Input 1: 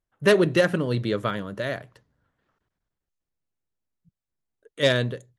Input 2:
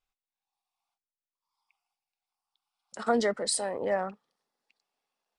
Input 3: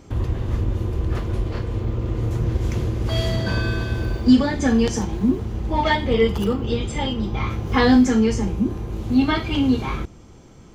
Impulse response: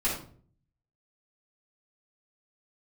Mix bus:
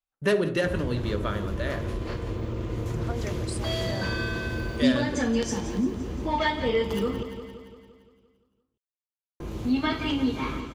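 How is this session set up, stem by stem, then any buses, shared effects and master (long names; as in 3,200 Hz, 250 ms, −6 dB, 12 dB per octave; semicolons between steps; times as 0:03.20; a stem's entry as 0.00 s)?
−2.5 dB, 0.00 s, send −15.5 dB, echo send −18 dB, noise gate with hold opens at −47 dBFS
−8.5 dB, 0.00 s, no send, no echo send, no processing
−0.5 dB, 0.55 s, muted 0:07.23–0:09.40, no send, echo send −12.5 dB, low-shelf EQ 140 Hz −7.5 dB; notch filter 790 Hz, Q 15; hum removal 55.35 Hz, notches 28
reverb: on, RT60 0.50 s, pre-delay 3 ms
echo: repeating echo 172 ms, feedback 57%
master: downward compressor 1.5 to 1, threshold −29 dBFS, peak gain reduction 7 dB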